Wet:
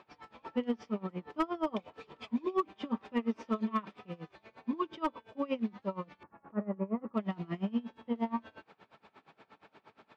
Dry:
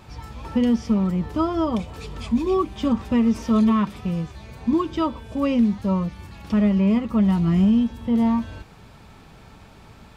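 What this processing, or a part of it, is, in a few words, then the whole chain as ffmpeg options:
helicopter radio: -filter_complex "[0:a]asettb=1/sr,asplit=3[a][b][c];[a]atrim=end=6.234[d];[b]atrim=start=6.23:end=7.14,asetpts=PTS-STARTPTS,afade=t=in:d=0.004:c=qsin,afade=t=out:st=0.906:d=0.004:c=qsin,lowpass=f=1.5k:w=0.5412,lowpass=f=1.5k:w=1.3066[e];[c]atrim=start=7.136[f];[d][e]acrossfade=d=0.004:c1=hsin:c2=qsin[g];[g][f]acrossfade=d=0.004:c1=qsin:c2=hsin,highpass=340,lowpass=3k,aeval=exprs='val(0)*pow(10,-24*(0.5-0.5*cos(2*PI*8.5*n/s))/20)':c=same,asoftclip=type=hard:threshold=-18.5dB,volume=-3dB"

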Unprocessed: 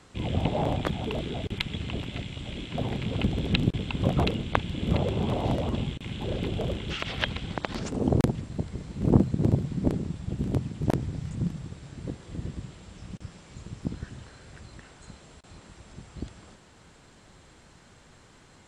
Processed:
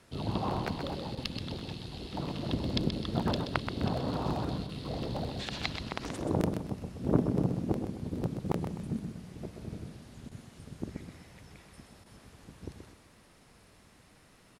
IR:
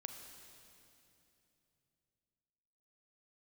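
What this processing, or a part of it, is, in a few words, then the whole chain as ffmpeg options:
nightcore: -af "asetrate=56448,aresample=44100,aecho=1:1:128|256|384|512:0.422|0.152|0.0547|0.0197,volume=-6dB"

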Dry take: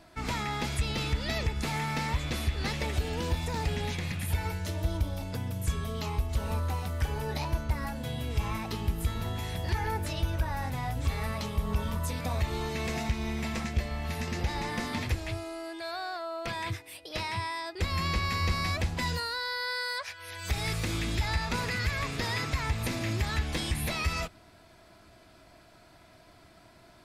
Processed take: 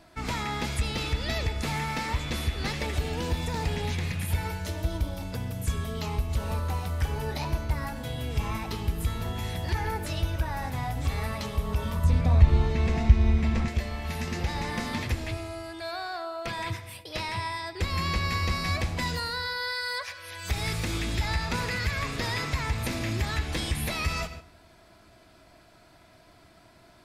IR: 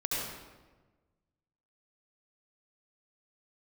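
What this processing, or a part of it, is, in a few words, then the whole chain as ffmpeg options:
keyed gated reverb: -filter_complex "[0:a]asplit=3[a][b][c];[1:a]atrim=start_sample=2205[d];[b][d]afir=irnorm=-1:irlink=0[e];[c]apad=whole_len=1192471[f];[e][f]sidechaingate=range=-12dB:threshold=-49dB:ratio=16:detection=peak,volume=-15.5dB[g];[a][g]amix=inputs=2:normalize=0,asettb=1/sr,asplit=3[h][i][j];[h]atrim=end=12.044[k];[i]atrim=start=12.04:end=13.68,asetpts=PTS-STARTPTS,afade=t=in:d=0.004:c=qsin,afade=t=out:st=1.636:d=0.004:c=qsin,aemphasis=mode=reproduction:type=bsi[l];[j]atrim=start=13.676[m];[k][l]acrossfade=d=0.004:c1=hsin:c2=qsin[n];[n][m]acrossfade=d=0.004:c1=qsin:c2=hsin"

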